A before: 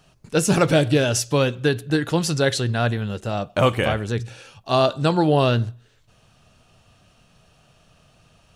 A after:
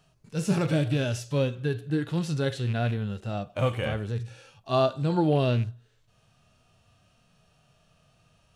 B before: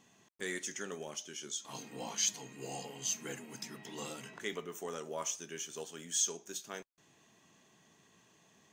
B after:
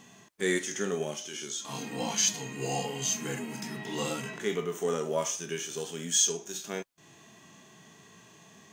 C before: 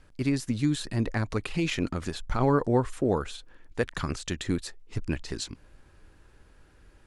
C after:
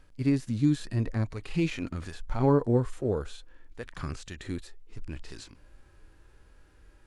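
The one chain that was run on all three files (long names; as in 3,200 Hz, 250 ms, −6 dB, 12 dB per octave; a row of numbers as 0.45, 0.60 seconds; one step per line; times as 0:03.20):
loose part that buzzes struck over −20 dBFS, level −24 dBFS
harmonic and percussive parts rebalanced percussive −15 dB
normalise the peak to −12 dBFS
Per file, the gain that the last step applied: −4.0, +14.5, +2.0 decibels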